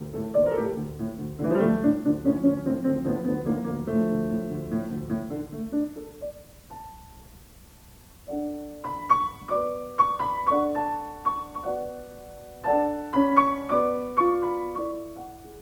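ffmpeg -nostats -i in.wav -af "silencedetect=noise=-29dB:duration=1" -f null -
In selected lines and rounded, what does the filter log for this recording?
silence_start: 6.29
silence_end: 8.29 | silence_duration: 2.00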